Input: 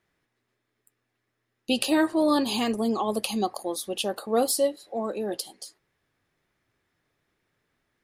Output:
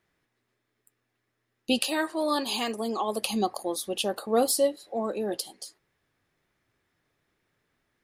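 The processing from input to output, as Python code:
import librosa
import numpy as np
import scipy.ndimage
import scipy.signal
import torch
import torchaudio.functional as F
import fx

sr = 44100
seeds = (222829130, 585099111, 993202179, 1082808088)

y = fx.highpass(x, sr, hz=fx.line((1.78, 970.0), (3.21, 370.0)), slope=6, at=(1.78, 3.21), fade=0.02)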